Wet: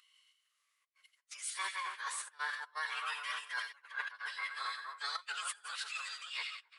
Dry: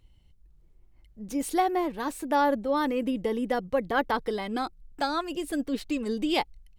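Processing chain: ending faded out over 1.13 s; steep high-pass 1100 Hz 48 dB/oct; on a send: split-band echo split 1800 Hz, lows 0.272 s, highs 88 ms, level -9 dB; on the sum: step gate "xxxxxxx.xx.x" 125 bpm -24 dB; reverse; compressor 16:1, threshold -43 dBFS, peak gain reduction 19 dB; reverse; formant-preserving pitch shift -11.5 st; gain +9 dB

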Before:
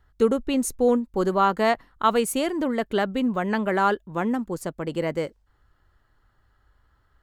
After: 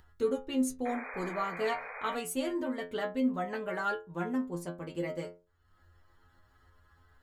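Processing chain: metallic resonator 85 Hz, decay 0.35 s, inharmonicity 0.002; upward compressor, threshold -51 dBFS; painted sound noise, 0.85–2.16, 410–2500 Hz -43 dBFS

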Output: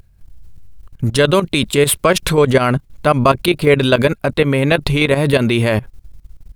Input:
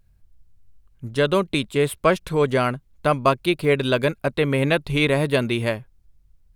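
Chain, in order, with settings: 1.05–2.33 high shelf 2800 Hz +4 dB; level quantiser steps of 18 dB; maximiser +22.5 dB; gain -1 dB

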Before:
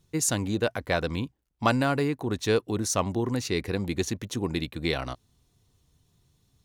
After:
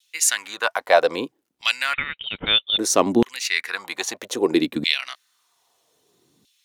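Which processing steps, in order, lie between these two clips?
LFO high-pass saw down 0.62 Hz 220–3100 Hz; 1.93–2.78 inverted band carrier 4000 Hz; vibrato 1 Hz 27 cents; gain +7 dB

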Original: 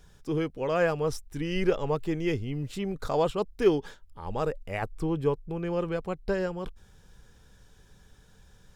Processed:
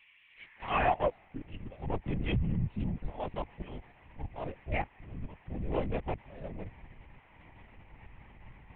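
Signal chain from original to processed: Wiener smoothing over 41 samples; auto swell 0.455 s; band noise 210–2200 Hz -62 dBFS; fixed phaser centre 1400 Hz, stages 6; high-pass sweep 2700 Hz -> 70 Hz, 0.3–2.11; LPC vocoder at 8 kHz whisper; gain +3.5 dB

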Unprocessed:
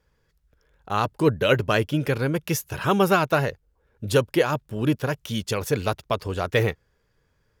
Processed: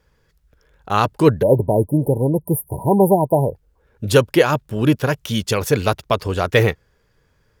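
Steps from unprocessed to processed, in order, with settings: spectral delete 1.42–3.56, 1000–8900 Hz; gain +6.5 dB

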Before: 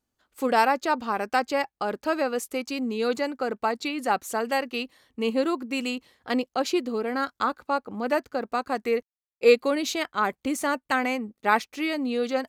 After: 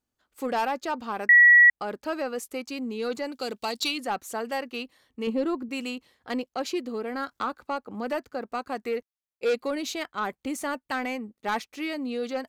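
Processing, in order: 3.32–3.98 resonant high shelf 2400 Hz +12.5 dB, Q 1.5; soft clip -16 dBFS, distortion -14 dB; 1.29–1.7 bleep 1930 Hz -7.5 dBFS; 5.27–5.69 tilt -2 dB/oct; 7.31–8.31 three-band squash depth 40%; gain -3.5 dB

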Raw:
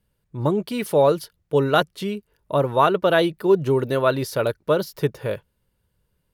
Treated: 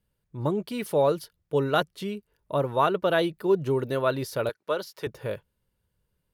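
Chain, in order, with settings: 4.49–5.07 weighting filter A; gain -5.5 dB

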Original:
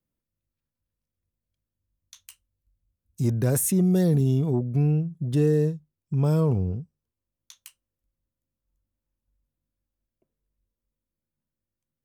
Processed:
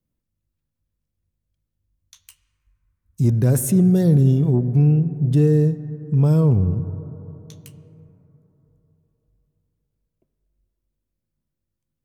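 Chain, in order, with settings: low shelf 300 Hz +8.5 dB; reverb RT60 3.6 s, pre-delay 58 ms, DRR 13 dB

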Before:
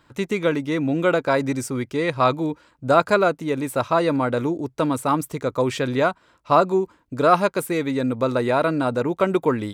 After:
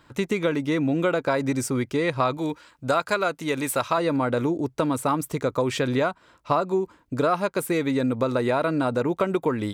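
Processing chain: 2.37–3.98 tilt shelf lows -5 dB, about 930 Hz; compressor 4:1, threshold -22 dBFS, peak gain reduction 10.5 dB; gain +2 dB

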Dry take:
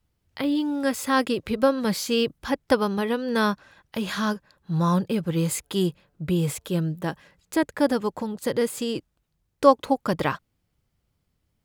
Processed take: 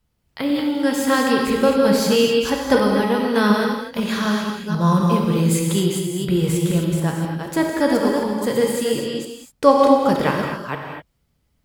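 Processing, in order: reverse delay 0.25 s, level -5 dB; non-linear reverb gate 0.28 s flat, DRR 0.5 dB; gain +2 dB

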